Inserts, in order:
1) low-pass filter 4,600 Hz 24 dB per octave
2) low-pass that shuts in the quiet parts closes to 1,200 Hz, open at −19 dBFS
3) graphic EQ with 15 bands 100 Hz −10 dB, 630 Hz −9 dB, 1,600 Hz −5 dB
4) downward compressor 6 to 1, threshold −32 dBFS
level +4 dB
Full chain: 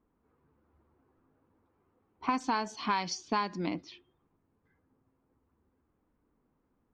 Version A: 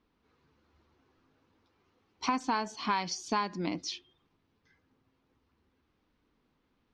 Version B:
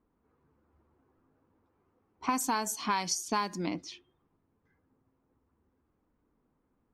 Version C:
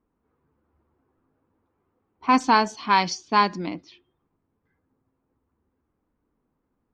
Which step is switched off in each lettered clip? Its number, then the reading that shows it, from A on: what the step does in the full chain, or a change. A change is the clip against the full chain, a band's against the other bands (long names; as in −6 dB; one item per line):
2, 8 kHz band +2.5 dB
1, 8 kHz band +10.5 dB
4, average gain reduction 7.0 dB